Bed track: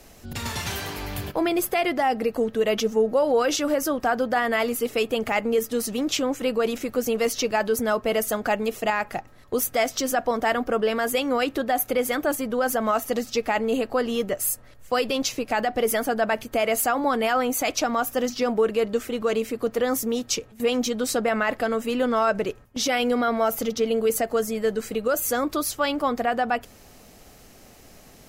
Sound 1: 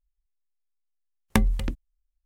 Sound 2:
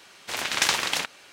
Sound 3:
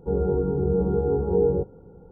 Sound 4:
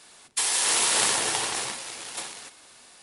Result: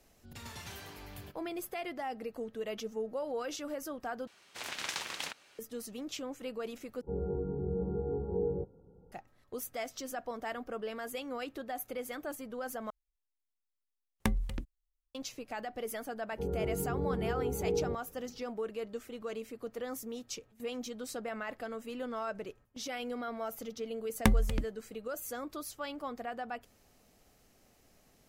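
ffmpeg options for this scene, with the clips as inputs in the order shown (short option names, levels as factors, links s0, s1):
-filter_complex "[3:a]asplit=2[s0][s1];[1:a]asplit=2[s2][s3];[0:a]volume=0.158[s4];[2:a]alimiter=limit=0.447:level=0:latency=1:release=475[s5];[s0]lowpass=f=1200:p=1[s6];[s4]asplit=4[s7][s8][s9][s10];[s7]atrim=end=4.274[s11];[s5]atrim=end=1.32,asetpts=PTS-STARTPTS,volume=0.266[s12];[s8]atrim=start=5.586:end=7.014[s13];[s6]atrim=end=2.11,asetpts=PTS-STARTPTS,volume=0.266[s14];[s9]atrim=start=9.116:end=12.904[s15];[s2]atrim=end=2.25,asetpts=PTS-STARTPTS,volume=0.335[s16];[s10]atrim=start=15.146[s17];[s1]atrim=end=2.11,asetpts=PTS-STARTPTS,volume=0.266,afade=t=in:d=0.004:c=hsin,afade=t=out:st=2.106:d=0.004:c=hsin,adelay=16320[s18];[s3]atrim=end=2.25,asetpts=PTS-STARTPTS,volume=0.631,afade=t=in:d=0.004:c=hsin,afade=t=out:st=2.246:d=0.004:c=hsin,adelay=22900[s19];[s11][s12]acrossfade=d=0.004:c1=hsin:c2=hsin[s20];[s20][s13]acrossfade=d=0.004:c1=hsin:c2=hsin[s21];[s21][s14]acrossfade=d=0.004:c1=hsin:c2=hsin[s22];[s22][s15]acrossfade=d=0.004:c1=hsin:c2=hsin[s23];[s23][s16]acrossfade=d=0.004:c1=hsin:c2=hsin[s24];[s24][s17]acrossfade=d=0.004:c1=hsin:c2=hsin[s25];[s25][s18][s19]amix=inputs=3:normalize=0"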